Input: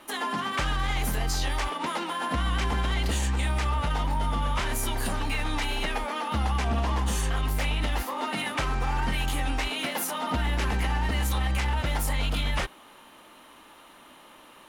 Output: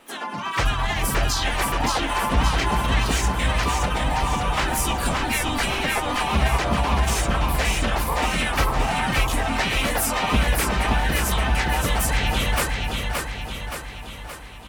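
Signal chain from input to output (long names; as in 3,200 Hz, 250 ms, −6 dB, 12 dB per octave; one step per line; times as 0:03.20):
reverb reduction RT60 1.9 s
hum removal 249.1 Hz, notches 12
automatic gain control gain up to 8.5 dB
pitch-shifted copies added −3 semitones −1 dB, +12 semitones −14 dB
repeating echo 572 ms, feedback 55%, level −3.5 dB
level −3.5 dB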